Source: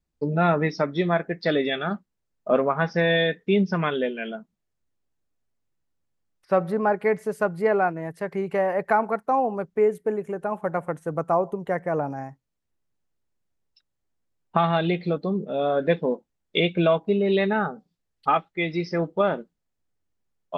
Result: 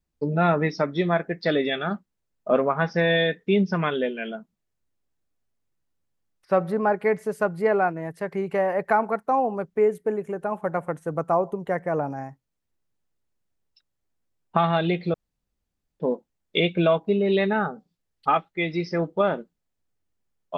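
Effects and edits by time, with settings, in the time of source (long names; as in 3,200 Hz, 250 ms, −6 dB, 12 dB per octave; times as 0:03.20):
0:15.14–0:16.00: fill with room tone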